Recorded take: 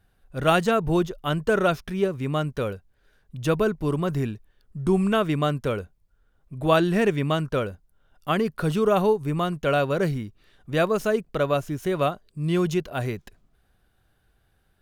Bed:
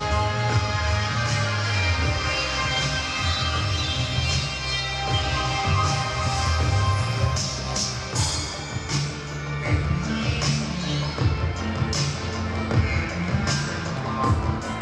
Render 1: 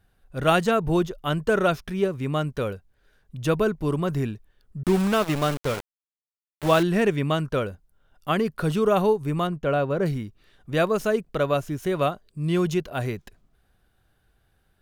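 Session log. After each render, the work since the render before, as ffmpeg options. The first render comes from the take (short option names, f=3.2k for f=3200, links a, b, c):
-filter_complex "[0:a]asettb=1/sr,asplit=3[a][b][c];[a]atrim=end=4.834[d];[b]atrim=start=4.83:end=6.83,asetpts=PTS-STARTPTS,afade=t=in:d=0.004:c=qsin,afade=t=out:st=1.996:d=0.004:c=qsin,aeval=exprs='val(0)*gte(abs(val(0)),0.0473)':c=same[e];[c]atrim=start=6.826[f];[d][e]acrossfade=d=0.004:c1=hsin:c2=qsin[g];[g][f]acrossfade=d=0.004:c1=qsin:c2=hsin,asettb=1/sr,asplit=3[h][i][j];[h]atrim=end=9.474[k];[i]atrim=start=9.47:end=10.06,asetpts=PTS-STARTPTS,afade=t=in:d=0.004:c=qsin,afade=t=out:st=0.586:d=0.004:c=qsin,highshelf=f=2.2k:g=-12[l];[j]atrim=start=10.056[m];[k][l]acrossfade=d=0.004:c1=hsin:c2=qsin[n];[n][m]acrossfade=d=0.004:c1=qsin:c2=hsin"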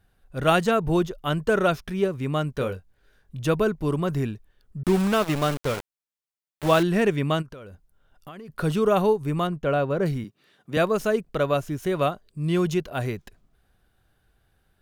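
-filter_complex "[0:a]asettb=1/sr,asplit=3[a][b][c];[a]atrim=end=2.584[d];[b]atrim=start=2.58:end=3.4,asetpts=PTS-STARTPTS,afade=t=in:d=0.004:c=qsin,afade=t=out:st=0.816:d=0.004:c=qsin,asplit=2[e][f];[f]adelay=22,volume=-7.5dB[g];[e][g]amix=inputs=2:normalize=0,atrim=end_sample=36162[h];[c]atrim=start=3.396[i];[d][h]acrossfade=d=0.004:c1=hsin:c2=qsin[j];[j][i]acrossfade=d=0.004:c1=qsin:c2=hsin,asplit=3[k][l][m];[k]afade=t=out:st=7.41:d=0.02[n];[l]acompressor=threshold=-38dB:ratio=8:attack=3.2:release=140:knee=1:detection=peak,afade=t=in:st=7.41:d=0.02,afade=t=out:st=8.48:d=0.02[o];[m]afade=t=in:st=8.48:d=0.02[p];[n][o][p]amix=inputs=3:normalize=0,asettb=1/sr,asplit=3[q][r][s];[q]atrim=end=10.244[t];[r]atrim=start=10.24:end=10.77,asetpts=PTS-STARTPTS,afade=t=in:d=0.004:c=qsin,afade=t=out:st=0.526:d=0.004:c=qsin,highpass=f=140:w=0.5412,highpass=f=140:w=1.3066[u];[s]atrim=start=10.766[v];[t][u]acrossfade=d=0.004:c1=hsin:c2=qsin[w];[w][v]acrossfade=d=0.004:c1=qsin:c2=hsin"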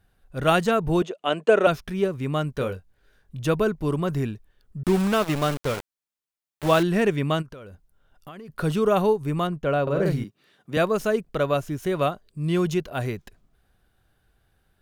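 -filter_complex "[0:a]asettb=1/sr,asplit=3[a][b][c];[a]atrim=end=1.024[d];[b]atrim=start=1.02:end=1.67,asetpts=PTS-STARTPTS,afade=t=in:d=0.004:c=qsin,afade=t=out:st=0.646:d=0.004:c=qsin,highpass=f=220:w=0.5412,highpass=f=220:w=1.3066,equalizer=f=470:t=q:w=4:g=5,equalizer=f=670:t=q:w=4:g=8,equalizer=f=2.6k:t=q:w=4:g=8,equalizer=f=5.2k:t=q:w=4:g=-7,lowpass=f=8.7k:w=0.5412,lowpass=f=8.7k:w=1.3066[e];[c]atrim=start=1.666[f];[d][e]acrossfade=d=0.004:c1=hsin:c2=qsin[g];[g][f]acrossfade=d=0.004:c1=qsin:c2=hsin,asettb=1/sr,asplit=3[h][i][j];[h]atrim=end=9.824[k];[i]atrim=start=9.82:end=10.24,asetpts=PTS-STARTPTS,afade=t=in:d=0.004:c=qsin,afade=t=out:st=0.416:d=0.004:c=qsin,asplit=2[l][m];[m]adelay=50,volume=-3dB[n];[l][n]amix=inputs=2:normalize=0,atrim=end_sample=18522[o];[j]atrim=start=10.236[p];[k][o]acrossfade=d=0.004:c1=hsin:c2=qsin[q];[q][p]acrossfade=d=0.004:c1=qsin:c2=hsin"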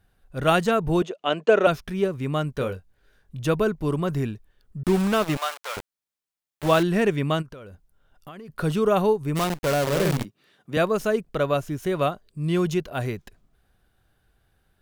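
-filter_complex "[0:a]asettb=1/sr,asplit=3[a][b][c];[a]atrim=end=1.164[d];[b]atrim=start=1.16:end=1.65,asetpts=PTS-STARTPTS,afade=t=in:d=0.004:c=qsin,afade=t=out:st=0.486:d=0.004:c=qsin,highshelf=f=7.6k:t=q:w=1.5:g=-8[e];[c]atrim=start=1.646[f];[d][e]acrossfade=d=0.004:c1=hsin:c2=qsin[g];[g][f]acrossfade=d=0.004:c1=qsin:c2=hsin,asettb=1/sr,asplit=3[h][i][j];[h]atrim=end=5.374[k];[i]atrim=start=5.37:end=5.77,asetpts=PTS-STARTPTS,afade=t=in:d=0.004:c=qsin,afade=t=out:st=0.396:d=0.004:c=qsin,highpass=f=730:w=0.5412,highpass=f=730:w=1.3066[l];[j]atrim=start=5.766[m];[k][l]acrossfade=d=0.004:c1=hsin:c2=qsin[n];[n][m]acrossfade=d=0.004:c1=qsin:c2=hsin,asplit=3[o][p][q];[o]afade=t=out:st=9.35:d=0.02[r];[p]acrusher=bits=5:dc=4:mix=0:aa=0.000001,afade=t=in:st=9.35:d=0.02,afade=t=out:st=10.24:d=0.02[s];[q]afade=t=in:st=10.24:d=0.02[t];[r][s][t]amix=inputs=3:normalize=0"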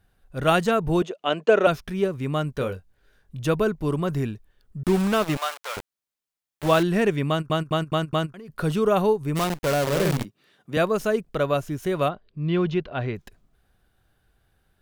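-filter_complex "[0:a]asplit=3[a][b][c];[a]afade=t=out:st=12.08:d=0.02[d];[b]lowpass=f=3.9k:w=0.5412,lowpass=f=3.9k:w=1.3066,afade=t=in:st=12.08:d=0.02,afade=t=out:st=13.15:d=0.02[e];[c]afade=t=in:st=13.15:d=0.02[f];[d][e][f]amix=inputs=3:normalize=0,asplit=6[g][h][i][j][k][l];[g]atrim=end=7.502[m];[h]atrim=start=7.288:end=7.502[n];[i]atrim=start=7.288:end=7.502[o];[j]atrim=start=7.288:end=7.502[p];[k]atrim=start=7.288:end=7.502[q];[l]atrim=start=8.338[r];[m][n]acrossfade=d=0.004:c1=hsin:c2=hsin[s];[s][o]acrossfade=d=0.004:c1=hsin:c2=hsin[t];[t][p]acrossfade=d=0.004:c1=hsin:c2=hsin[u];[u][q]acrossfade=d=0.004:c1=hsin:c2=hsin[v];[v][r]acrossfade=d=0.004:c1=hsin:c2=hsin"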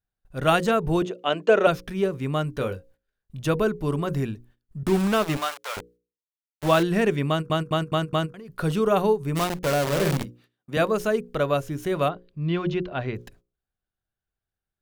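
-af "agate=range=-23dB:threshold=-53dB:ratio=16:detection=peak,bandreject=f=60:t=h:w=6,bandreject=f=120:t=h:w=6,bandreject=f=180:t=h:w=6,bandreject=f=240:t=h:w=6,bandreject=f=300:t=h:w=6,bandreject=f=360:t=h:w=6,bandreject=f=420:t=h:w=6,bandreject=f=480:t=h:w=6,bandreject=f=540:t=h:w=6"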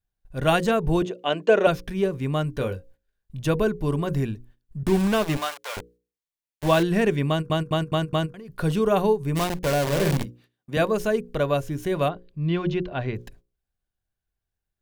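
-af "lowshelf=f=79:g=7.5,bandreject=f=1.3k:w=9.4"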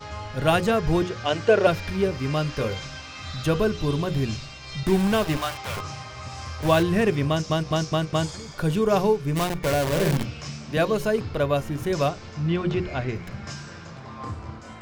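-filter_complex "[1:a]volume=-12.5dB[a];[0:a][a]amix=inputs=2:normalize=0"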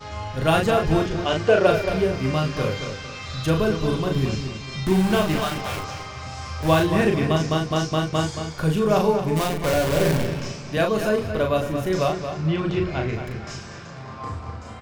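-filter_complex "[0:a]asplit=2[a][b];[b]adelay=38,volume=-4dB[c];[a][c]amix=inputs=2:normalize=0,asplit=2[d][e];[e]adelay=225,lowpass=f=4k:p=1,volume=-8dB,asplit=2[f][g];[g]adelay=225,lowpass=f=4k:p=1,volume=0.35,asplit=2[h][i];[i]adelay=225,lowpass=f=4k:p=1,volume=0.35,asplit=2[j][k];[k]adelay=225,lowpass=f=4k:p=1,volume=0.35[l];[f][h][j][l]amix=inputs=4:normalize=0[m];[d][m]amix=inputs=2:normalize=0"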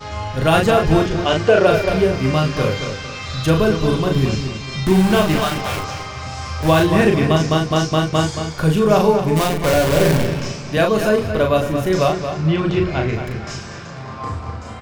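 -af "volume=5.5dB,alimiter=limit=-3dB:level=0:latency=1"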